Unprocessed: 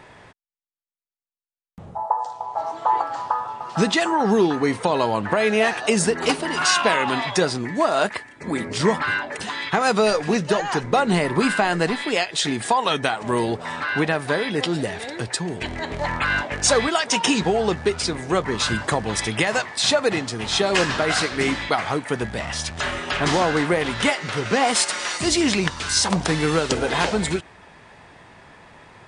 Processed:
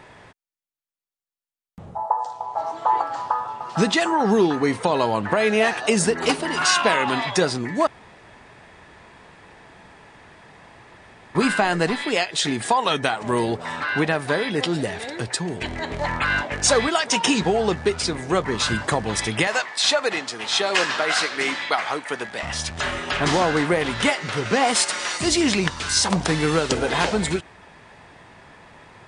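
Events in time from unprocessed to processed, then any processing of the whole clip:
0:07.87–0:11.35: fill with room tone
0:19.47–0:22.43: meter weighting curve A

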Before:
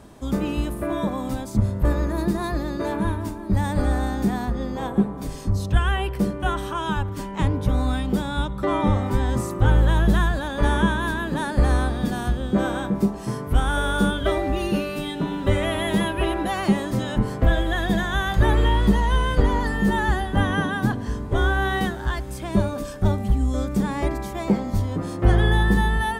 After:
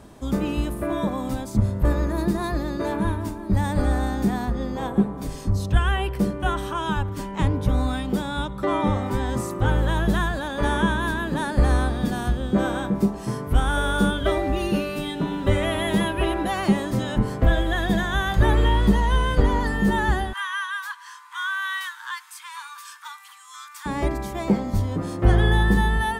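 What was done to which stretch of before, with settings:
0:07.87–0:10.89: low-shelf EQ 110 Hz −7 dB
0:20.33–0:23.86: Butterworth high-pass 940 Hz 96 dB per octave

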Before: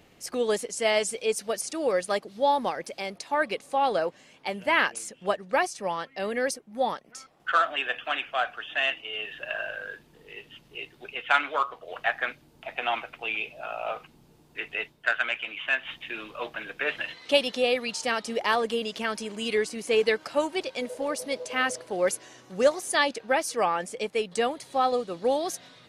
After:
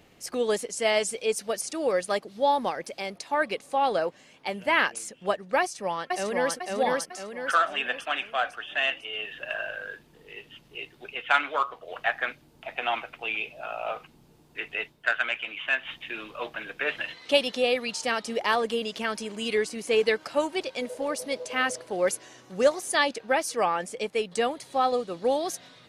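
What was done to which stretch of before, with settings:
0:05.60–0:06.55: delay throw 500 ms, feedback 45%, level −1.5 dB

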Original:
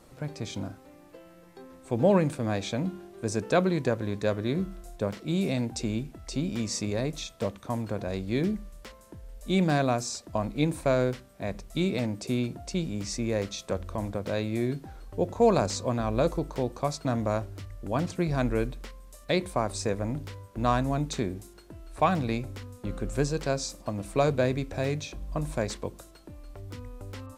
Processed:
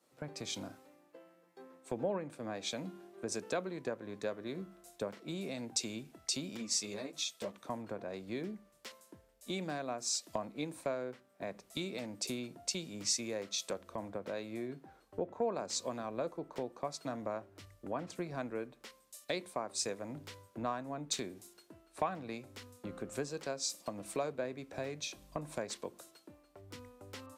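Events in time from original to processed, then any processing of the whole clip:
0:06.57–0:07.54: string-ensemble chorus
whole clip: Bessel high-pass filter 280 Hz, order 2; downward compressor 4 to 1, threshold −41 dBFS; multiband upward and downward expander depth 100%; level +2.5 dB

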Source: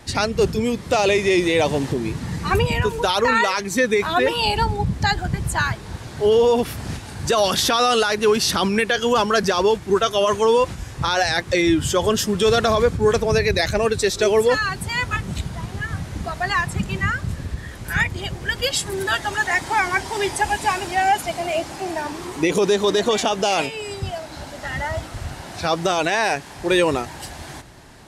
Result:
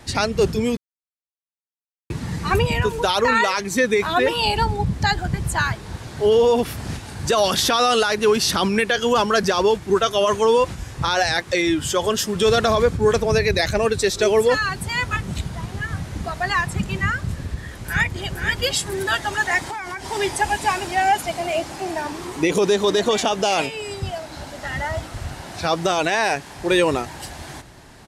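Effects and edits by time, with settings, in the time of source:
0:00.77–0:02.10: silence
0:11.37–0:12.36: low-shelf EQ 270 Hz −7 dB
0:17.68–0:18.26: delay throw 470 ms, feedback 10%, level −6 dB
0:19.64–0:20.09: downward compressor 12 to 1, threshold −26 dBFS

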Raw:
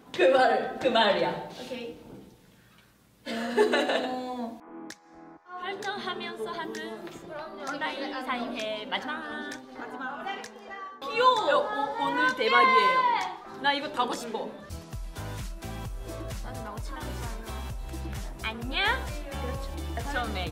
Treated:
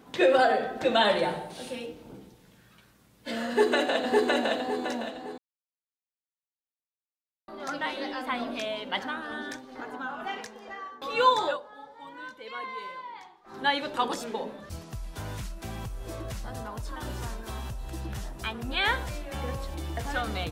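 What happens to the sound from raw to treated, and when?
0:01.05–0:01.86: parametric band 9,300 Hz +13.5 dB 0.35 octaves
0:03.48–0:04.53: delay throw 560 ms, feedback 35%, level −1 dB
0:05.38–0:07.48: silence
0:11.44–0:13.57: duck −17 dB, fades 0.14 s
0:16.46–0:18.57: notch filter 2,200 Hz, Q 11

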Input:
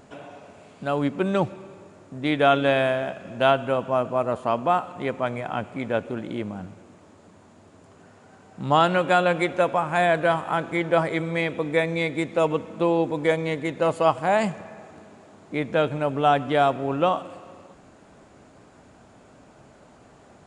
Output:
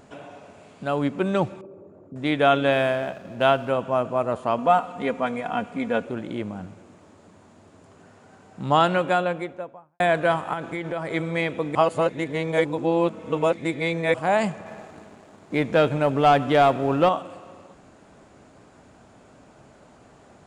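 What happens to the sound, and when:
0:01.61–0:02.16: spectral envelope exaggerated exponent 2
0:02.72–0:03.70: slack as between gear wheels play −44 dBFS
0:04.58–0:06.05: comb filter 4.2 ms
0:08.82–0:10.00: fade out and dull
0:10.53–0:11.14: downward compressor, threshold −25 dBFS
0:11.75–0:14.14: reverse
0:14.66–0:17.09: leveller curve on the samples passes 1

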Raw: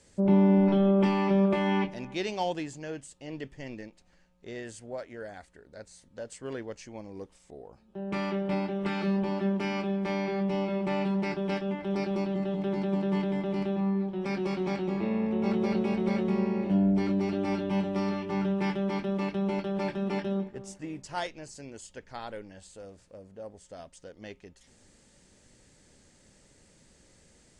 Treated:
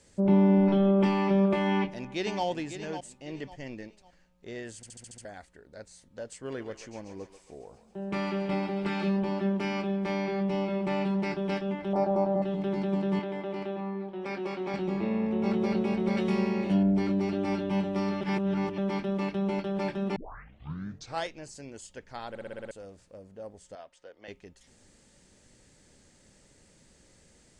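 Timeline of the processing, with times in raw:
0:01.71–0:02.45: delay throw 550 ms, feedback 30%, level −9.5 dB
0:04.76: stutter in place 0.07 s, 7 plays
0:06.39–0:09.09: feedback echo with a high-pass in the loop 137 ms, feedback 68%, high-pass 820 Hz, level −8 dB
0:11.93–0:12.42: drawn EQ curve 410 Hz 0 dB, 670 Hz +14 dB, 2,800 Hz −14 dB, 6,100 Hz −9 dB
0:13.19–0:14.74: bass and treble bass −12 dB, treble −7 dB
0:16.17–0:16.83: high-shelf EQ 2,000 Hz +11 dB
0:18.21–0:18.78: reverse
0:20.16: tape start 1.09 s
0:22.29: stutter in place 0.06 s, 7 plays
0:23.75–0:24.28: three-way crossover with the lows and the highs turned down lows −17 dB, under 390 Hz, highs −13 dB, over 3,900 Hz

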